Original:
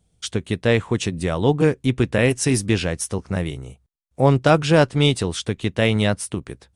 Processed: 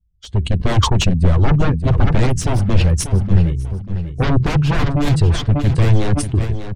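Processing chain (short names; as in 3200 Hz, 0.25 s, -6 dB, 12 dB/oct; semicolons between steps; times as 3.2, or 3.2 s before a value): per-bin expansion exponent 1.5; flange 1.8 Hz, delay 0.8 ms, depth 2 ms, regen -56%; sine folder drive 19 dB, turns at -7.5 dBFS; on a send: feedback echo 0.591 s, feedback 28%, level -10.5 dB; on the sum: AGC; RIAA curve playback; sustainer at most 100 dB/s; gain -15.5 dB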